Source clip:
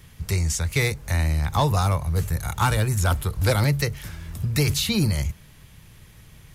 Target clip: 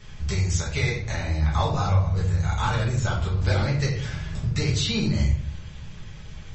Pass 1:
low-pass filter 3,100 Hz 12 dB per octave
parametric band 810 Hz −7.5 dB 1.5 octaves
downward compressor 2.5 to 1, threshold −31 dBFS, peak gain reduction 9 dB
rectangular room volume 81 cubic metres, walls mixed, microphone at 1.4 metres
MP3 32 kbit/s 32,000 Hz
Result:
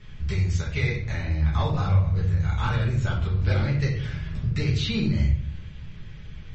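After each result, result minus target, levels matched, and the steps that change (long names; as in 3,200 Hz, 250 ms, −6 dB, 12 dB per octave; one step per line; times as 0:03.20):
8,000 Hz band −11.5 dB; 1,000 Hz band −4.5 dB
change: low-pass filter 7,500 Hz 12 dB per octave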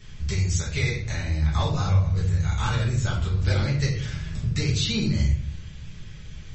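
1,000 Hz band −4.5 dB
remove: parametric band 810 Hz −7.5 dB 1.5 octaves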